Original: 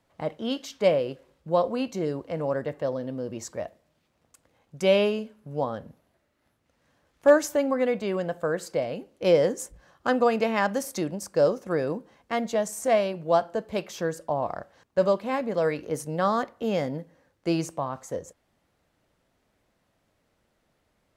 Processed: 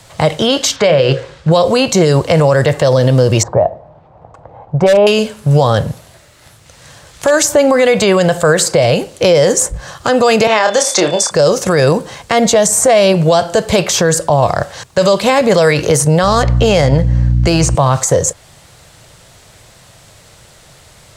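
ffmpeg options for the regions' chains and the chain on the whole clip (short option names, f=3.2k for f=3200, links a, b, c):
-filter_complex "[0:a]asettb=1/sr,asplit=3[a][b][c];[a]atrim=end=0.764[d];[b]atrim=start=0.76:end=1.52,asetpts=PTS-STARTPTS,afade=t=in:d=0.004:c=qsin,afade=t=out:st=0.756:d=0.004:c=qsin,lowpass=4.9k,equalizer=f=1.6k:w=2.1:g=6,bandreject=f=60:t=h:w=6,bandreject=f=120:t=h:w=6,bandreject=f=180:t=h:w=6,bandreject=f=240:t=h:w=6,bandreject=f=300:t=h:w=6,bandreject=f=360:t=h:w=6,bandreject=f=420:t=h:w=6,bandreject=f=480:t=h:w=6,bandreject=f=540:t=h:w=6[e];[c]atrim=start=1.516[f];[d][e]acrossfade=d=0.004:c1=hsin:c2=qsin[g];[g][f]acrossfade=d=0.004:c1=qsin:c2=hsin,asettb=1/sr,asplit=3[h][i][j];[h]atrim=end=3.434[k];[i]atrim=start=3.43:end=5.07,asetpts=PTS-STARTPTS,afade=t=in:d=0.004:c=qsin,afade=t=out:st=1.636:d=0.004:c=qsin,lowpass=f=810:t=q:w=2.8,volume=11dB,asoftclip=hard,volume=-11dB[l];[j]atrim=start=5.066[m];[k][l]acrossfade=d=0.004:c1=hsin:c2=qsin[n];[n][m]acrossfade=d=0.004:c1=qsin:c2=hsin,asettb=1/sr,asplit=3[o][p][q];[o]atrim=end=10.474[r];[p]atrim=start=10.47:end=11.31,asetpts=PTS-STARTPTS,afade=t=in:d=0.004:c=qsin,afade=t=out:st=0.836:d=0.004:c=qsin,highpass=450,lowpass=6.1k,aeval=exprs='val(0)+0.00112*sin(2*PI*3500*n/s)':c=same,asplit=2[s][t];[t]adelay=28,volume=-6.5dB[u];[s][u]amix=inputs=2:normalize=0,atrim=end_sample=37044[v];[q]atrim=start=11.306[w];[r][v]acrossfade=d=0.004:c1=hsin:c2=qsin[x];[x][w]acrossfade=d=0.004:c1=qsin:c2=hsin,asettb=1/sr,asplit=3[y][z][aa];[y]atrim=end=16.234[ab];[z]atrim=start=16.23:end=17.75,asetpts=PTS-STARTPTS,afade=t=in:d=0.004:c=qsin,afade=t=out:st=1.516:d=0.004:c=qsin,bandreject=f=3.6k:w=13,adynamicsmooth=sensitivity=7.5:basefreq=5.8k,aeval=exprs='val(0)+0.0126*(sin(2*PI*60*n/s)+sin(2*PI*2*60*n/s)/2+sin(2*PI*3*60*n/s)/3+sin(2*PI*4*60*n/s)/4+sin(2*PI*5*60*n/s)/5)':c=same[ac];[aa]atrim=start=17.746[ad];[ab][ac]acrossfade=d=0.004:c1=hsin:c2=qsin[ae];[ae][ad]acrossfade=d=0.004:c1=qsin:c2=hsin,equalizer=f=125:t=o:w=1:g=8,equalizer=f=250:t=o:w=1:g=-11,equalizer=f=4k:t=o:w=1:g=5,equalizer=f=8k:t=o:w=1:g=11,acrossover=split=580|1800[af][ag][ah];[af]acompressor=threshold=-32dB:ratio=4[ai];[ag]acompressor=threshold=-37dB:ratio=4[aj];[ah]acompressor=threshold=-40dB:ratio=4[ak];[ai][aj][ak]amix=inputs=3:normalize=0,alimiter=level_in=28dB:limit=-1dB:release=50:level=0:latency=1,volume=-1dB"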